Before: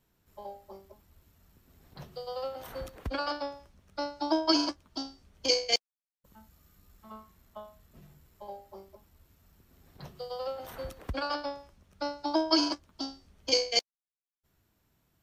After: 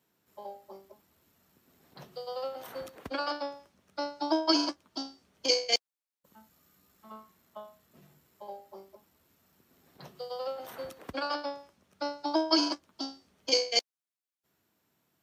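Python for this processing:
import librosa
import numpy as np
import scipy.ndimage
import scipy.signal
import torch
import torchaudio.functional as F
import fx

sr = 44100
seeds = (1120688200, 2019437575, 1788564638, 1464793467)

y = scipy.signal.sosfilt(scipy.signal.butter(2, 190.0, 'highpass', fs=sr, output='sos'), x)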